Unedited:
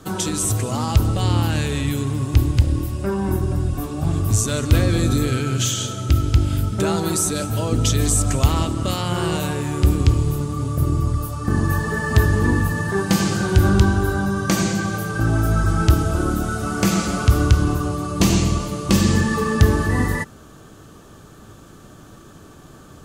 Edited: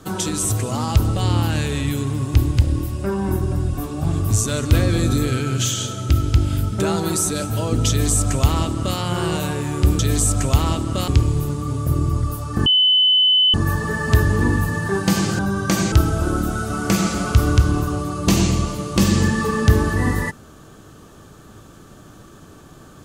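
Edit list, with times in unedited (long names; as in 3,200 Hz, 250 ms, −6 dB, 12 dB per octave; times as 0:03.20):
0:07.89–0:08.98: duplicate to 0:09.99
0:11.57: insert tone 3,020 Hz −11.5 dBFS 0.88 s
0:13.42–0:14.19: remove
0:14.72–0:15.85: remove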